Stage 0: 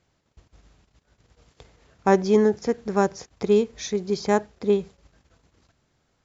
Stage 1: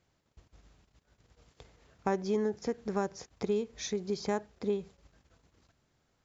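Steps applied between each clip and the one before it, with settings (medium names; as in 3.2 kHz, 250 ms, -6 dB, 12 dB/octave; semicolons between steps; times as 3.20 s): compression 2.5:1, threshold -25 dBFS, peak gain reduction 9 dB; trim -5 dB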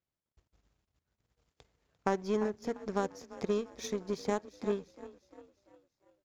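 frequency-shifting echo 346 ms, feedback 58%, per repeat +31 Hz, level -12.5 dB; power-law waveshaper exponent 1.4; trim +2.5 dB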